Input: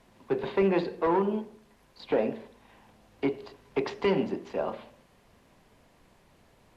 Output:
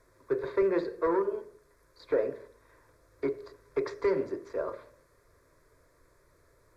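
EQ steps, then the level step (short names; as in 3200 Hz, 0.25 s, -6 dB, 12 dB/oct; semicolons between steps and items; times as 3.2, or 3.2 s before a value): fixed phaser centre 790 Hz, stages 6; 0.0 dB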